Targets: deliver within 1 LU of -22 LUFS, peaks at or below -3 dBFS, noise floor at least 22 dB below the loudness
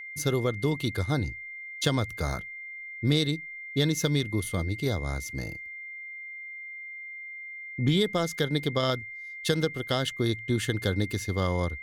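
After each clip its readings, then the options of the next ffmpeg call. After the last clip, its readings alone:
steady tone 2100 Hz; tone level -38 dBFS; loudness -29.5 LUFS; peak -10.0 dBFS; loudness target -22.0 LUFS
-> -af "bandreject=f=2.1k:w=30"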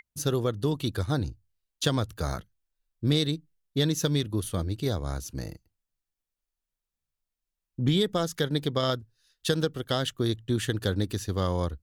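steady tone none; loudness -29.0 LUFS; peak -10.5 dBFS; loudness target -22.0 LUFS
-> -af "volume=7dB"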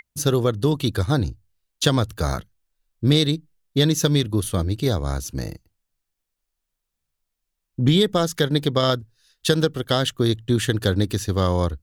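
loudness -22.0 LUFS; peak -3.5 dBFS; noise floor -81 dBFS

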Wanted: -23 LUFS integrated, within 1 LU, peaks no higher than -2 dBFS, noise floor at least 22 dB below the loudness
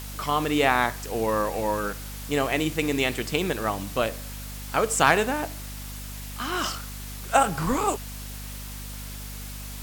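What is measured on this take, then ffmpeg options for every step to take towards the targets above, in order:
hum 50 Hz; harmonics up to 250 Hz; hum level -36 dBFS; noise floor -37 dBFS; noise floor target -48 dBFS; loudness -25.5 LUFS; peak -6.0 dBFS; loudness target -23.0 LUFS
-> -af "bandreject=f=50:t=h:w=4,bandreject=f=100:t=h:w=4,bandreject=f=150:t=h:w=4,bandreject=f=200:t=h:w=4,bandreject=f=250:t=h:w=4"
-af "afftdn=nr=11:nf=-37"
-af "volume=2.5dB"

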